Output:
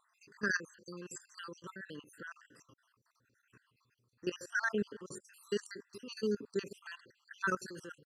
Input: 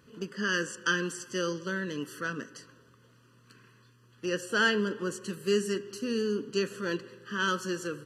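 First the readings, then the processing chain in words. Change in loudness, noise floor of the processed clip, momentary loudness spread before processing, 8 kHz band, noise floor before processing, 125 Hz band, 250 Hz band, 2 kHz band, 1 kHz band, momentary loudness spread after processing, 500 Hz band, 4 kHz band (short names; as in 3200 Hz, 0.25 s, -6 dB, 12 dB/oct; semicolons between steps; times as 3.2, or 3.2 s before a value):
-8.5 dB, -78 dBFS, 11 LU, -10.0 dB, -61 dBFS, -10.5 dB, -10.0 dB, -7.5 dB, -8.0 dB, 15 LU, -9.0 dB, -14.0 dB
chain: random spectral dropouts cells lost 63%; level quantiser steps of 15 dB; downsampling 32000 Hz; gain -1 dB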